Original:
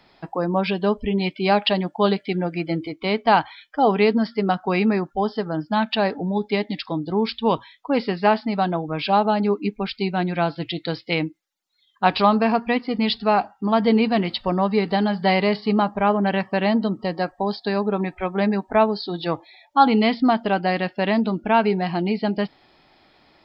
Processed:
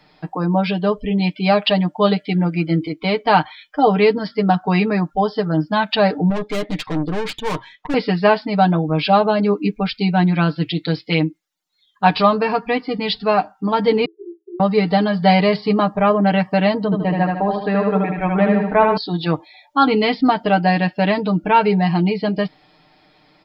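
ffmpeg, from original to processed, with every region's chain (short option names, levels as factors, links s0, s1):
-filter_complex "[0:a]asettb=1/sr,asplit=3[s0][s1][s2];[s0]atrim=end=6.304[s3];[s1]atrim=start=6.3:end=7.94,asetpts=PTS-STARTPTS,afade=t=in:d=0.004:c=qsin,afade=t=out:st=1.636:d=0.004:c=qsin,bass=f=250:g=-4,treble=f=4000:g=-11,acontrast=26,aeval=exprs='(tanh(17.8*val(0)+0.65)-tanh(0.65))/17.8':c=same[s4];[s2]atrim=start=7.936[s5];[s3][s4]acrossfade=d=0.004:c1=hsin:c2=qsin[s6];[s6][s5]acrossfade=d=0.004:c1=qsin:c2=hsin,asettb=1/sr,asplit=3[s7][s8][s9];[s7]atrim=end=14.054[s10];[s8]atrim=start=14.05:end=14.6,asetpts=PTS-STARTPTS,afade=t=in:d=0.004:c=qsin,afade=t=out:st=0.546:d=0.004:c=qsin,acompressor=threshold=0.0794:ratio=3:attack=3.2:release=140:knee=1:detection=peak,asuperpass=centerf=370:order=20:qfactor=3.9[s11];[s9]atrim=start=14.596[s12];[s10][s11]acrossfade=d=0.004:c1=hsin:c2=qsin[s13];[s13][s12]acrossfade=d=0.004:c1=qsin:c2=hsin,asettb=1/sr,asplit=3[s14][s15][s16];[s14]atrim=end=16.844[s17];[s15]atrim=start=16.84:end=18.97,asetpts=PTS-STARTPTS,afade=t=in:d=0.004:c=qsin,afade=t=out:st=2.126:d=0.004:c=qsin,lowpass=f=2800:w=0.5412,lowpass=f=2800:w=1.3066,aecho=1:1:77|154|231|308|385|462:0.668|0.307|0.141|0.0651|0.0299|0.0138,atrim=end_sample=93933[s18];[s16]atrim=start=18.966[s19];[s17][s18]acrossfade=d=0.004:c1=hsin:c2=qsin[s20];[s20][s19]acrossfade=d=0.004:c1=qsin:c2=hsin,equalizer=f=180:t=o:w=0.54:g=4.5,aecho=1:1:6.6:0.75,dynaudnorm=f=380:g=9:m=1.88"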